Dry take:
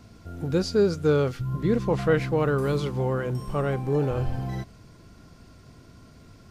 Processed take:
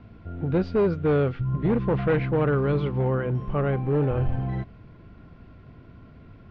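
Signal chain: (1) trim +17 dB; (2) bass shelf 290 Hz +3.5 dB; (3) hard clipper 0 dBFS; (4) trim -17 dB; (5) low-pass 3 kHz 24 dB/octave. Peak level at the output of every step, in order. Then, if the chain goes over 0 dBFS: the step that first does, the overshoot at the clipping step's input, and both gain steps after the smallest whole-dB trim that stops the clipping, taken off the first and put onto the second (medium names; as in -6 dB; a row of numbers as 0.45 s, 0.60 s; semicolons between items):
+6.0 dBFS, +8.0 dBFS, 0.0 dBFS, -17.0 dBFS, -16.0 dBFS; step 1, 8.0 dB; step 1 +9 dB, step 4 -9 dB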